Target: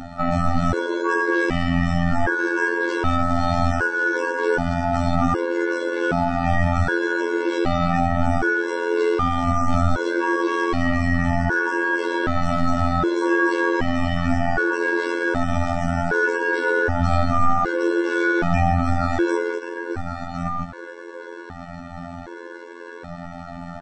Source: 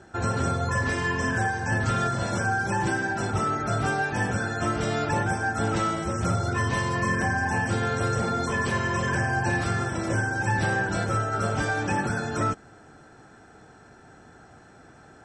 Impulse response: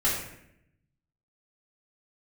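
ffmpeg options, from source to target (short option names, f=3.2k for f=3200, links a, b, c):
-filter_complex "[0:a]aeval=exprs='val(0)+0.001*(sin(2*PI*60*n/s)+sin(2*PI*2*60*n/s)/2+sin(2*PI*3*60*n/s)/3+sin(2*PI*4*60*n/s)/4+sin(2*PI*5*60*n/s)/5)':c=same,acrossover=split=400[a][b];[b]acompressor=threshold=-27dB:ratio=8[c];[a][c]amix=inputs=2:normalize=0,acrossover=split=170 5200:gain=0.224 1 0.1[d][e][f];[d][e][f]amix=inputs=3:normalize=0,aecho=1:1:686:0.237,aeval=exprs='val(0)*sin(2*PI*110*n/s)':c=same,lowshelf=f=420:g=7.5,atempo=0.64,asplit=2[g][h];[h]acompressor=threshold=-41dB:ratio=6,volume=3dB[i];[g][i]amix=inputs=2:normalize=0,afftfilt=real='hypot(re,im)*cos(PI*b)':imag='0':win_size=2048:overlap=0.75,alimiter=level_in=16dB:limit=-1dB:release=50:level=0:latency=1,afftfilt=real='re*gt(sin(2*PI*0.65*pts/sr)*(1-2*mod(floor(b*sr/1024/290),2)),0)':imag='im*gt(sin(2*PI*0.65*pts/sr)*(1-2*mod(floor(b*sr/1024/290),2)),0)':win_size=1024:overlap=0.75,volume=-1dB"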